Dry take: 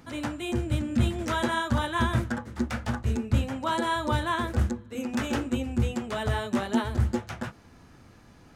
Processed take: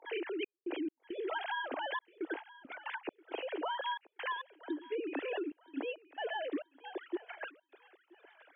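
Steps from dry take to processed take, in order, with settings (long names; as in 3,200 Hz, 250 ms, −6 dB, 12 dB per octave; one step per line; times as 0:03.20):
three sine waves on the formant tracks
Butterworth high-pass 290 Hz 72 dB per octave
parametric band 1,200 Hz −10.5 dB 0.87 octaves
downward compressor, threshold −38 dBFS, peak gain reduction 15.5 dB
gate pattern "xx.x.xxxx.x.xx.x" 68 BPM −60 dB
feedback echo with a high-pass in the loop 977 ms, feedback 36%, high-pass 640 Hz, level −18 dB
level +3 dB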